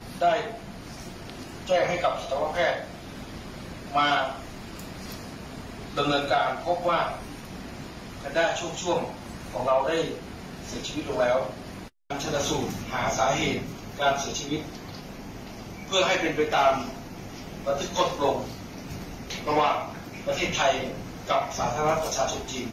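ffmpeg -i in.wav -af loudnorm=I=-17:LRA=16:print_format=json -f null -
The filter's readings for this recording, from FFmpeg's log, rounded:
"input_i" : "-26.8",
"input_tp" : "-9.0",
"input_lra" : "2.3",
"input_thresh" : "-38.0",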